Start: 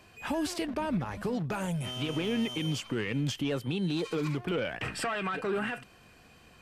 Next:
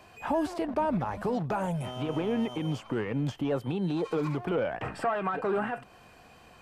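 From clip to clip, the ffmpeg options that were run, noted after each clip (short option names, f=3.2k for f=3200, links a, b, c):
-filter_complex "[0:a]equalizer=f=790:t=o:w=1.3:g=8,acrossover=split=1600[a][b];[b]acompressor=threshold=-48dB:ratio=6[c];[a][c]amix=inputs=2:normalize=0"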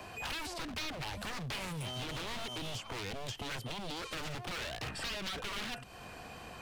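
-filter_complex "[0:a]aeval=exprs='0.0266*(abs(mod(val(0)/0.0266+3,4)-2)-1)':c=same,acrossover=split=120|2600|5300[a][b][c][d];[a]acompressor=threshold=-52dB:ratio=4[e];[b]acompressor=threshold=-52dB:ratio=4[f];[c]acompressor=threshold=-48dB:ratio=4[g];[d]acompressor=threshold=-56dB:ratio=4[h];[e][f][g][h]amix=inputs=4:normalize=0,volume=7dB"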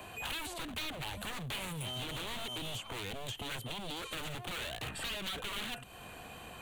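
-af "aexciter=amount=1:drive=5.2:freq=2.8k,volume=-1dB"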